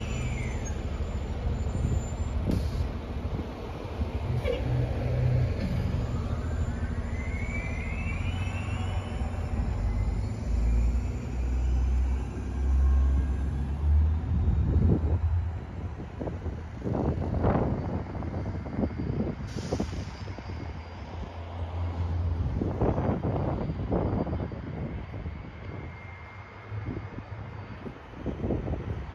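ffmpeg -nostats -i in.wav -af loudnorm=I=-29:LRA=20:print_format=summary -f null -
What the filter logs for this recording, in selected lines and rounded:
Input Integrated:    -31.3 LUFS
Input True Peak:     -11.5 dBTP
Input LRA:             8.8 LU
Input Threshold:     -41.5 LUFS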